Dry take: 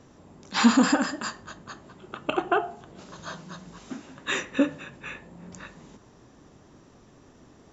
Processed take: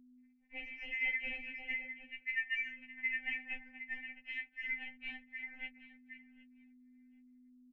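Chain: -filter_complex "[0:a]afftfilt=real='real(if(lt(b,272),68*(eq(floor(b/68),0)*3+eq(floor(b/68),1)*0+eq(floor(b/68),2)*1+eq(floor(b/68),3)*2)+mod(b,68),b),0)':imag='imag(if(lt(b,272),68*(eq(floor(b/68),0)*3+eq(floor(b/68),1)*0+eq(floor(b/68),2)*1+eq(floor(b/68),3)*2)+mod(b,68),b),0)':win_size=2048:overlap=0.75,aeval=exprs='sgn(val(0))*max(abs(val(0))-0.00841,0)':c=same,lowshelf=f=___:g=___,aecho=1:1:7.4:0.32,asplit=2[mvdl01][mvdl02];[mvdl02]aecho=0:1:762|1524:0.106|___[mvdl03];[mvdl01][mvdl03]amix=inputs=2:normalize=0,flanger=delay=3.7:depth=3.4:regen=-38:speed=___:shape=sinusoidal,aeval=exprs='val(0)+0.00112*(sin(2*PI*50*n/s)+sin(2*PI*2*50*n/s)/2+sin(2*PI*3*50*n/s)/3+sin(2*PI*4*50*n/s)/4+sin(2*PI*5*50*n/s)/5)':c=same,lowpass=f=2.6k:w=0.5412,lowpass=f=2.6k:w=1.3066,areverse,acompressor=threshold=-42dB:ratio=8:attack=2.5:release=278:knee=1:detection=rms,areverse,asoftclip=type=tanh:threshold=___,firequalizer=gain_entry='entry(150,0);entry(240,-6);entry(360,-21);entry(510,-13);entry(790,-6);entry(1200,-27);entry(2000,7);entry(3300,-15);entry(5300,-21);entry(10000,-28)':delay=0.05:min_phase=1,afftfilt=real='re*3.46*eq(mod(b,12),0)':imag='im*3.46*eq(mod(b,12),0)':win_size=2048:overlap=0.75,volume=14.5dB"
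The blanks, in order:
240, 10, 0.0244, 0.54, -39dB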